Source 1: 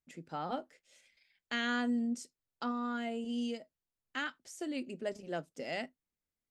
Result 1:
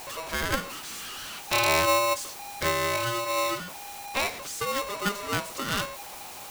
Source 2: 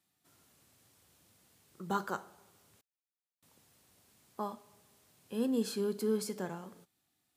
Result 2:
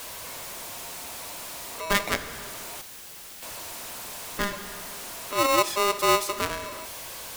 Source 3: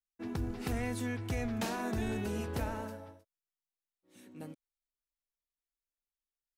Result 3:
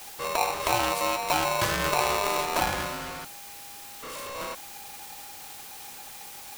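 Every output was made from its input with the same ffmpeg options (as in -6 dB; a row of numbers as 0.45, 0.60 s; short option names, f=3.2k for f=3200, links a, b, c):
-af "aeval=exprs='val(0)+0.5*0.0211*sgn(val(0))':c=same,aeval=exprs='0.126*(cos(1*acos(clip(val(0)/0.126,-1,1)))-cos(1*PI/2))+0.0316*(cos(2*acos(clip(val(0)/0.126,-1,1)))-cos(2*PI/2))+0.01*(cos(7*acos(clip(val(0)/0.126,-1,1)))-cos(7*PI/2))':c=same,aeval=exprs='val(0)*sgn(sin(2*PI*810*n/s))':c=same,volume=7.5dB"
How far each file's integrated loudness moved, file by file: +10.0, +7.5, +9.5 LU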